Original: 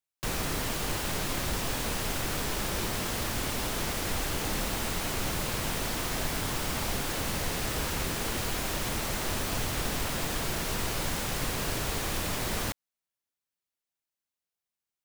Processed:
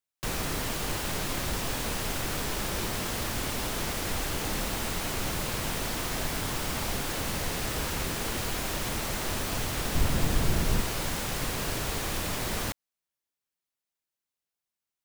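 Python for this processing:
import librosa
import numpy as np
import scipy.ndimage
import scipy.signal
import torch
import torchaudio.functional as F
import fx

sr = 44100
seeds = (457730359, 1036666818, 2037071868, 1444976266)

y = fx.low_shelf(x, sr, hz=260.0, db=11.0, at=(9.95, 10.81))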